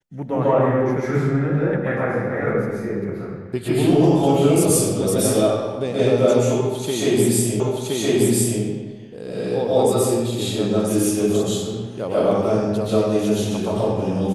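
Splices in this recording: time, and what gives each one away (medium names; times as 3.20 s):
7.60 s: repeat of the last 1.02 s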